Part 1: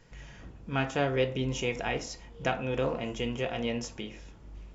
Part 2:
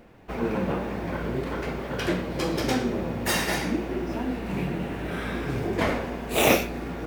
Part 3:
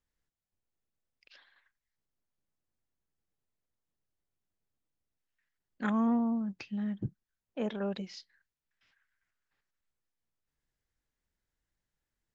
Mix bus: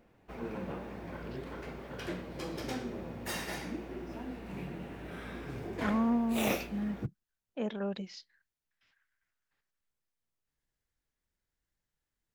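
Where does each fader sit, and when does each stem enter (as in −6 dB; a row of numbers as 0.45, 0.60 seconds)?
muted, −12.5 dB, −1.0 dB; muted, 0.00 s, 0.00 s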